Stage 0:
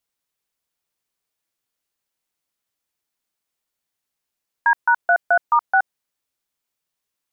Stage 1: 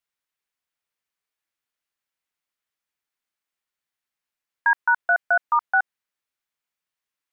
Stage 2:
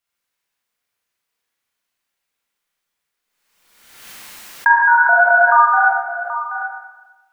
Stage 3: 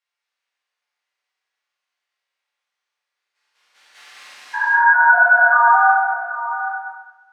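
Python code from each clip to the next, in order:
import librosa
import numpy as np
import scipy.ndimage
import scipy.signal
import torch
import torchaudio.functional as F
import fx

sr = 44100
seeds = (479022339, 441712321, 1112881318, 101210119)

y1 = fx.peak_eq(x, sr, hz=1800.0, db=8.0, octaves=2.0)
y1 = F.gain(torch.from_numpy(y1), -8.5).numpy()
y2 = y1 + 10.0 ** (-12.0 / 20.0) * np.pad(y1, (int(778 * sr / 1000.0), 0))[:len(y1)]
y2 = fx.rev_schroeder(y2, sr, rt60_s=1.1, comb_ms=32, drr_db=-7.5)
y2 = fx.pre_swell(y2, sr, db_per_s=47.0)
y2 = F.gain(torch.from_numpy(y2), 1.0).numpy()
y3 = fx.spec_steps(y2, sr, hold_ms=200)
y3 = fx.bandpass_edges(y3, sr, low_hz=660.0, high_hz=5600.0)
y3 = fx.room_shoebox(y3, sr, seeds[0], volume_m3=180.0, walls='mixed', distance_m=2.3)
y3 = F.gain(torch.from_numpy(y3), -6.0).numpy()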